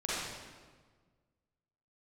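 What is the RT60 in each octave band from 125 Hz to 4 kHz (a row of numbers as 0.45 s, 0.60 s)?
2.0 s, 1.8 s, 1.6 s, 1.4 s, 1.3 s, 1.1 s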